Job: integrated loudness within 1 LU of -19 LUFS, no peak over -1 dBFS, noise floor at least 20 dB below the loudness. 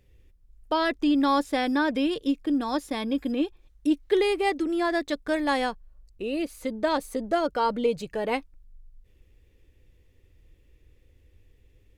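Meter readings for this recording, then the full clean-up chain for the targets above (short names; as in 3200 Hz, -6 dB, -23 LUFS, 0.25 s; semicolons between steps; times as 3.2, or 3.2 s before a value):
loudness -26.5 LUFS; peak -10.5 dBFS; loudness target -19.0 LUFS
-> gain +7.5 dB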